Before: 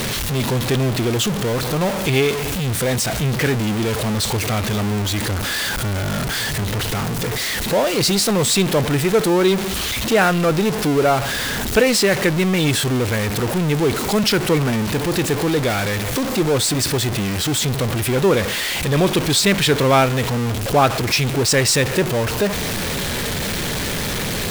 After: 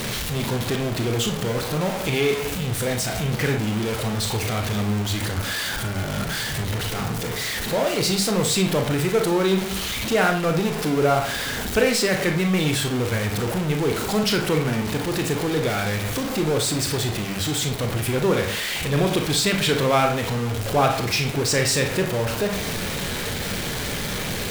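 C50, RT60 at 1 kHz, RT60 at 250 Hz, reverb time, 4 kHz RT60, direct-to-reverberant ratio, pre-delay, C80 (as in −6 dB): 7.5 dB, 0.45 s, 0.45 s, 0.45 s, 0.35 s, 3.0 dB, 30 ms, 12.0 dB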